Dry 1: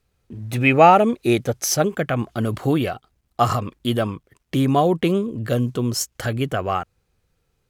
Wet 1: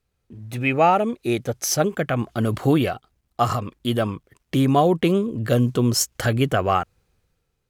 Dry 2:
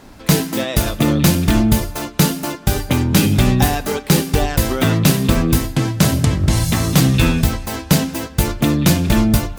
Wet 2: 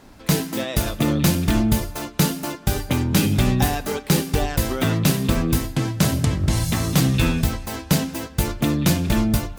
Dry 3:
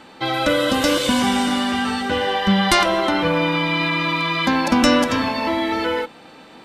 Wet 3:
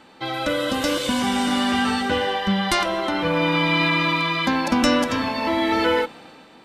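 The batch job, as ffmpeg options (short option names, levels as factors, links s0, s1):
-af "dynaudnorm=f=100:g=11:m=3.76,volume=0.531"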